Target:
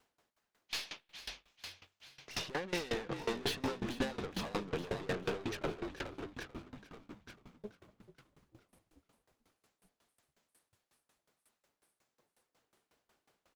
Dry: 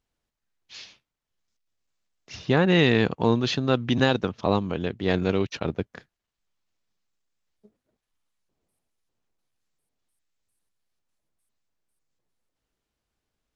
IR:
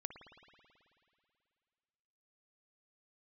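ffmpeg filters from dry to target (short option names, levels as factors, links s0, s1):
-filter_complex "[0:a]highpass=f=1000:p=1,tiltshelf=f=1400:g=6.5,acompressor=threshold=0.0158:ratio=6,aeval=exprs='(tanh(224*val(0)+0.3)-tanh(0.3))/224':c=same,asplit=9[s0][s1][s2][s3][s4][s5][s6][s7][s8];[s1]adelay=440,afreqshift=-46,volume=0.596[s9];[s2]adelay=880,afreqshift=-92,volume=0.335[s10];[s3]adelay=1320,afreqshift=-138,volume=0.186[s11];[s4]adelay=1760,afreqshift=-184,volume=0.105[s12];[s5]adelay=2200,afreqshift=-230,volume=0.0589[s13];[s6]adelay=2640,afreqshift=-276,volume=0.0327[s14];[s7]adelay=3080,afreqshift=-322,volume=0.0184[s15];[s8]adelay=3520,afreqshift=-368,volume=0.0102[s16];[s0][s9][s10][s11][s12][s13][s14][s15][s16]amix=inputs=9:normalize=0,asplit=2[s17][s18];[1:a]atrim=start_sample=2205[s19];[s18][s19]afir=irnorm=-1:irlink=0,volume=0.211[s20];[s17][s20]amix=inputs=2:normalize=0,aeval=exprs='val(0)*pow(10,-22*if(lt(mod(5.5*n/s,1),2*abs(5.5)/1000),1-mod(5.5*n/s,1)/(2*abs(5.5)/1000),(mod(5.5*n/s,1)-2*abs(5.5)/1000)/(1-2*abs(5.5)/1000))/20)':c=same,volume=7.08"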